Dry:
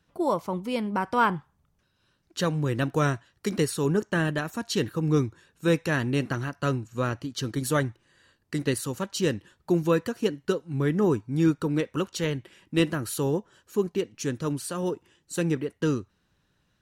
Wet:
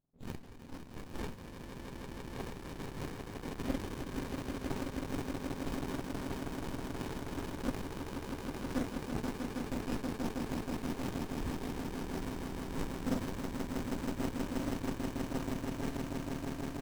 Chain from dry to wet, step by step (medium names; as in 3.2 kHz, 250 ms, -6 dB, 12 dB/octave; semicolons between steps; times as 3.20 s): spectrum inverted on a logarithmic axis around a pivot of 1.6 kHz; level-controlled noise filter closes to 400 Hz, open at -28.5 dBFS; comb 7.5 ms, depth 49%; on a send: echo with a slow build-up 160 ms, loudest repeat 8, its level -6 dB; on the sum: sliding maximum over 65 samples; trim -8 dB